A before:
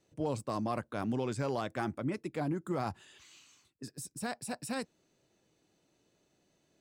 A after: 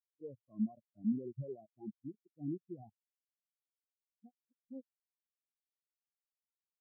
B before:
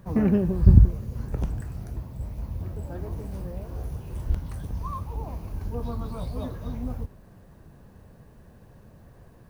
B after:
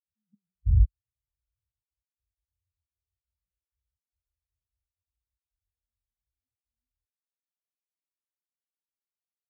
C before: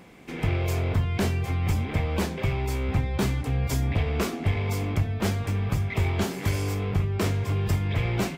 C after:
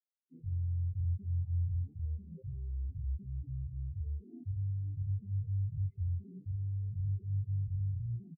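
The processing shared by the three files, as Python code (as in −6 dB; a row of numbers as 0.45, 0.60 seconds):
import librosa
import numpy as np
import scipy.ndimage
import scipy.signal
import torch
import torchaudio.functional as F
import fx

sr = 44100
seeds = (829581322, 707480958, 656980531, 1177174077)

y = fx.level_steps(x, sr, step_db=18)
y = fx.env_flanger(y, sr, rest_ms=11.6, full_db=-34.5)
y = fx.spectral_expand(y, sr, expansion=4.0)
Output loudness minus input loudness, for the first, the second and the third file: −6.5, +1.5, −10.5 LU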